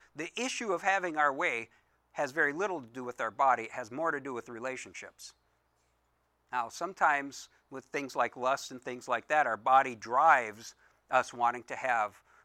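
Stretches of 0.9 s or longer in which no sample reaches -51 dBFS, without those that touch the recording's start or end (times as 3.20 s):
5.31–6.52 s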